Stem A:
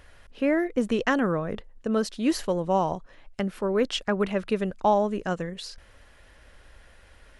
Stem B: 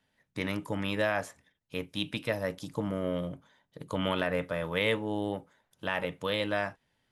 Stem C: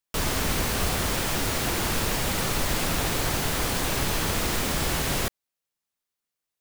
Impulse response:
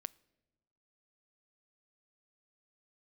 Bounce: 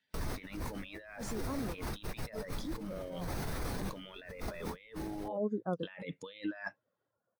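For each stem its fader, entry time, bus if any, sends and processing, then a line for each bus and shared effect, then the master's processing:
-13.5 dB, 0.40 s, bus A, no send, reverb removal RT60 0.86 s; elliptic band-pass 120–1300 Hz
-2.0 dB, 0.00 s, no bus, no send, weighting filter D; reverb removal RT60 1.4 s
-9.5 dB, 0.00 s, bus A, no send, notch 7200 Hz, Q 7.5
bus A: 0.0 dB, short-mantissa float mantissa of 4-bit; limiter -30.5 dBFS, peak gain reduction 10.5 dB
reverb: off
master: bell 3000 Hz -5.5 dB 0.43 oct; negative-ratio compressor -42 dBFS, ratio -1; spectral expander 1.5:1

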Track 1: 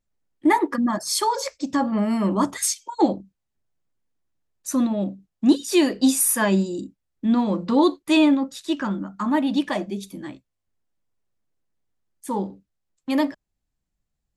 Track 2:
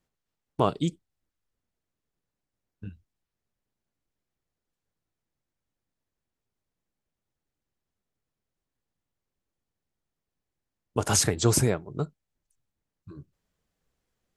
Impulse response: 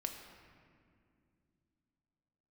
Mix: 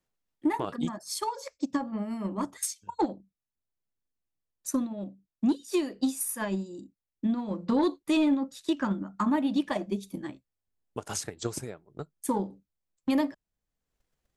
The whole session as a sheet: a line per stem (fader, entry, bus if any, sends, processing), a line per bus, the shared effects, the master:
7.43 s -12 dB -> 7.81 s -5 dB, 0.00 s, no send, bell 3000 Hz -2.5 dB 2.7 oct; soft clip -10.5 dBFS, distortion -20 dB
-2.5 dB, 0.00 s, no send, low shelf 130 Hz -8.5 dB; auto duck -12 dB, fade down 1.95 s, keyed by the first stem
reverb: off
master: transient shaper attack +10 dB, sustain -2 dB; limiter -18 dBFS, peak gain reduction 11.5 dB

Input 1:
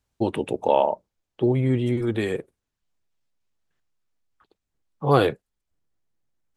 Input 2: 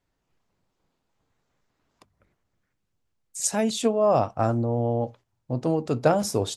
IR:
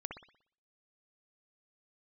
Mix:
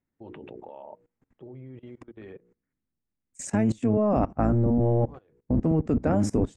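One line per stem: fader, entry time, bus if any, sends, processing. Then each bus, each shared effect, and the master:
-3.0 dB, 0.00 s, no send, LPF 3300 Hz; notches 60/120/180/240/300/360/420/480 Hz; compressor 4:1, threshold -21 dBFS, peak gain reduction 7.5 dB; auto duck -15 dB, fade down 0.30 s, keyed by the second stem
+3.0 dB, 0.00 s, no send, octaver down 1 oct, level +2 dB; ten-band EQ 250 Hz +12 dB, 2000 Hz +9 dB, 4000 Hz -10 dB, 8000 Hz +12 dB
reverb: off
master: level quantiser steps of 21 dB; tape spacing loss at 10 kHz 21 dB

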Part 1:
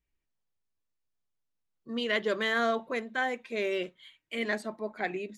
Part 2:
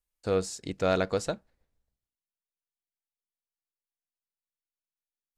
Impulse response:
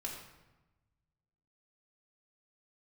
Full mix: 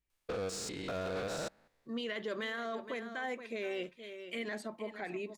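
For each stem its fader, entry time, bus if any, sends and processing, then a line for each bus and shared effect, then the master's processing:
-3.0 dB, 0.00 s, no send, echo send -13.5 dB, limiter -21.5 dBFS, peak gain reduction 6.5 dB
-1.0 dB, 0.10 s, no send, no echo send, stepped spectrum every 0.2 s; overdrive pedal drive 18 dB, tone 4600 Hz, clips at -30 dBFS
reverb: off
echo: echo 0.47 s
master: limiter -29.5 dBFS, peak gain reduction 7 dB

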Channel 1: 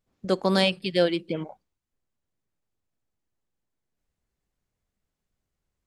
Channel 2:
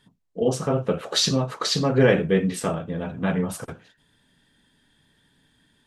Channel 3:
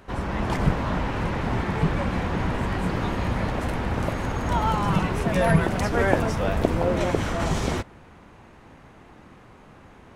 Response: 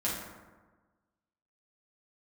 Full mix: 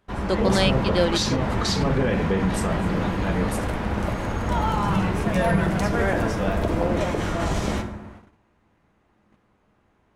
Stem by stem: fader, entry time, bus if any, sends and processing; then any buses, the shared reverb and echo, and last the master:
0.0 dB, 0.00 s, no bus, no send, dry
-0.5 dB, 0.00 s, bus A, no send, dry
-3.0 dB, 0.00 s, bus A, send -9.5 dB, dry
bus A: 0.0 dB, limiter -15 dBFS, peak gain reduction 9.5 dB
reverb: on, RT60 1.3 s, pre-delay 5 ms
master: gate -43 dBFS, range -16 dB

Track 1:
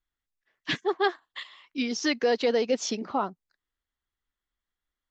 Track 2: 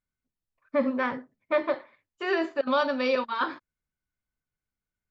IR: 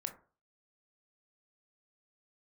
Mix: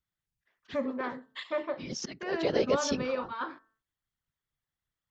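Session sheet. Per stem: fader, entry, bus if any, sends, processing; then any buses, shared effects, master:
-3.0 dB, 0.00 s, send -21 dB, auto swell 0.297 s; whisperiser
-8.0 dB, 0.00 s, send -12.5 dB, de-hum 222.4 Hz, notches 8; gate with hold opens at -59 dBFS; high shelf 3300 Hz -9.5 dB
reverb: on, RT60 0.40 s, pre-delay 17 ms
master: dry

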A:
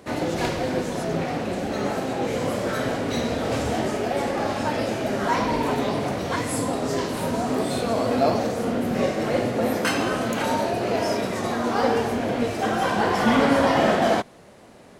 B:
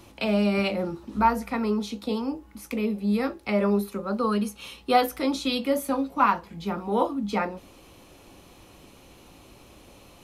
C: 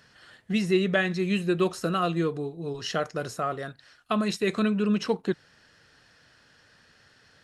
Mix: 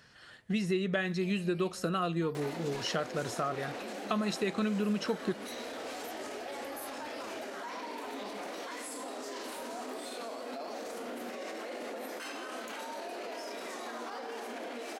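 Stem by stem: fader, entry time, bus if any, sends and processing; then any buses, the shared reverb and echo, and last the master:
-17.5 dB, 2.35 s, bus A, no send, steep high-pass 250 Hz 36 dB/oct; tilt shelf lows -3.5 dB, about 740 Hz; fast leveller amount 100%
1.6 s -7.5 dB -> 1.87 s 0 dB, 1.00 s, bus A, no send, pre-emphasis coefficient 0.8; dB-ramp tremolo decaying 0.71 Hz, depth 18 dB
-1.5 dB, 0.00 s, no bus, no send, dry
bus A: 0.0 dB, limiter -32.5 dBFS, peak gain reduction 11.5 dB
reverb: off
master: compressor 3:1, threshold -29 dBFS, peak gain reduction 8 dB

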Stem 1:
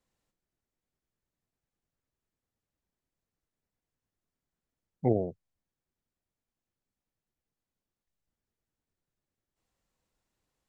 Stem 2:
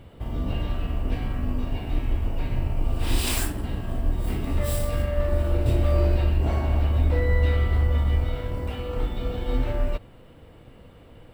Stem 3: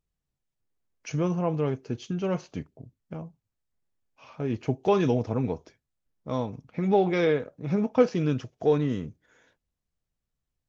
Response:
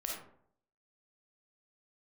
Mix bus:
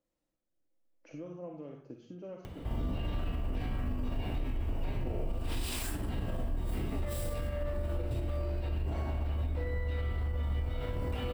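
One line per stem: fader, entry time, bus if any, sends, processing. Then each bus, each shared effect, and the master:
-2.5 dB, 0.00 s, bus A, send -10.5 dB, dry
-6.0 dB, 2.45 s, no bus, no send, upward compressor, threshold -38 dBFS
-8.5 dB, 0.00 s, bus A, send -19.5 dB, three-band squash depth 40%
bus A: 0.0 dB, double band-pass 410 Hz, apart 0.75 oct; compressor, threshold -49 dBFS, peak gain reduction 17.5 dB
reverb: on, RT60 0.65 s, pre-delay 10 ms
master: vocal rider 0.5 s; limiter -26 dBFS, peak gain reduction 10 dB

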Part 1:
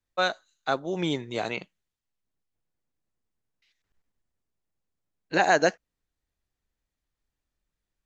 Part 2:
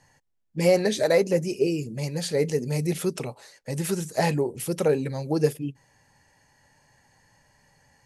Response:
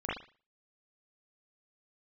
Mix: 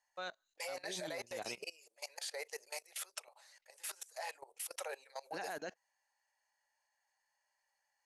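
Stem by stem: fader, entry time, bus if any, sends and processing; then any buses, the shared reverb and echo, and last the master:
-1.5 dB, 0.00 s, no send, auto duck -10 dB, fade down 0.25 s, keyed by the second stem
-3.5 dB, 0.00 s, no send, steep high-pass 620 Hz 36 dB/oct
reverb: off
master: low shelf 200 Hz -6 dB; level quantiser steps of 21 dB

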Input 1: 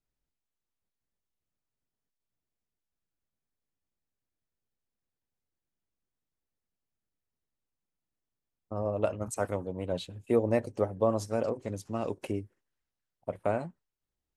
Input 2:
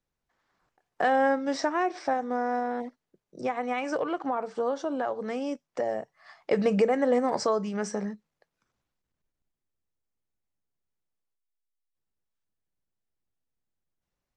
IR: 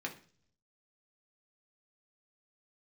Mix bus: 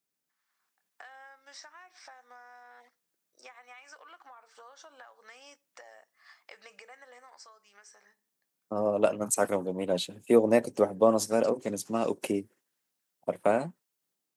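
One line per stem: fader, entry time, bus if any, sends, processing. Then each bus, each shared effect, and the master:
0.0 dB, 0.00 s, no send, HPF 160 Hz 24 dB/oct
-10.5 dB, 0.00 s, send -15.5 dB, Chebyshev high-pass 1300 Hz, order 2; compressor 16:1, threshold -43 dBFS, peak gain reduction 17.5 dB; auto duck -14 dB, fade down 1.75 s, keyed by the first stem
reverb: on, RT60 0.45 s, pre-delay 3 ms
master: high shelf 5200 Hz +9.5 dB; AGC gain up to 4.5 dB

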